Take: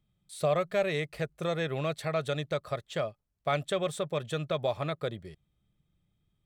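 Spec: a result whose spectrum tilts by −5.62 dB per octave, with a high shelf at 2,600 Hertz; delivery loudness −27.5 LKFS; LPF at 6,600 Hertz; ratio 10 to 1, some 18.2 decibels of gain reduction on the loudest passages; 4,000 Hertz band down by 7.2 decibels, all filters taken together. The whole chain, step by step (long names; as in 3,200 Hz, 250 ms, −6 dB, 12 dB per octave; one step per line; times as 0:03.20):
low-pass filter 6,600 Hz
high-shelf EQ 2,600 Hz −3.5 dB
parametric band 4,000 Hz −5.5 dB
downward compressor 10 to 1, threshold −42 dBFS
level +20 dB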